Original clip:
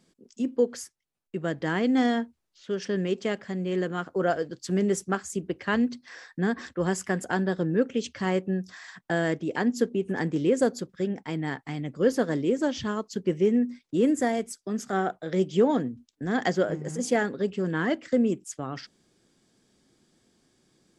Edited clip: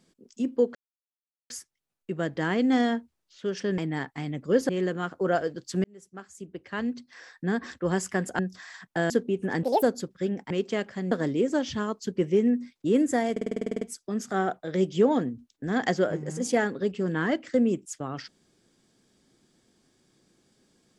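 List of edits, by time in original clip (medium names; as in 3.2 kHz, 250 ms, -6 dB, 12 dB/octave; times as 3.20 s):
0.75 s: insert silence 0.75 s
3.03–3.64 s: swap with 11.29–12.20 s
4.79–6.73 s: fade in
7.34–8.53 s: delete
9.24–9.76 s: delete
10.29–10.61 s: speed 165%
14.40 s: stutter 0.05 s, 11 plays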